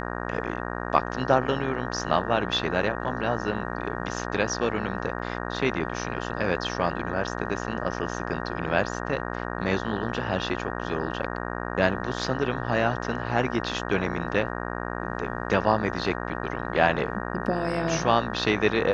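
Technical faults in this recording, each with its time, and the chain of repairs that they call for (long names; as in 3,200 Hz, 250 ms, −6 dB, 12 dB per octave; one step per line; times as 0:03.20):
mains buzz 60 Hz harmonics 31 −32 dBFS
0:05.19: drop-out 3.6 ms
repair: hum removal 60 Hz, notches 31
repair the gap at 0:05.19, 3.6 ms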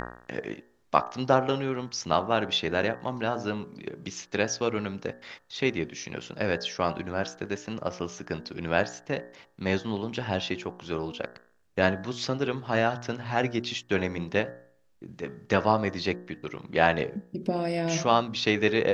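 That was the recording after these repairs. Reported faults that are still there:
none of them is left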